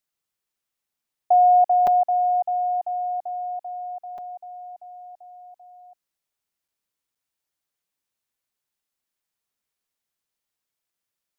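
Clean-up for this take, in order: interpolate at 1.87/4.18/6.68/7.15, 4.7 ms

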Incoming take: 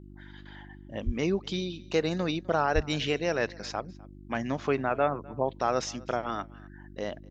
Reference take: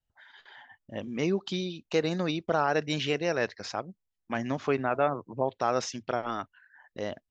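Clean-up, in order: de-hum 49.4 Hz, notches 7; 1.05–1.17 HPF 140 Hz 24 dB/oct; 2.74–2.86 HPF 140 Hz 24 dB/oct; inverse comb 0.253 s -23.5 dB

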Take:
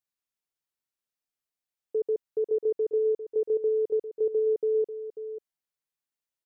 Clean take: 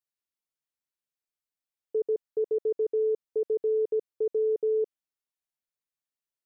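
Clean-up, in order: inverse comb 0.541 s -11 dB

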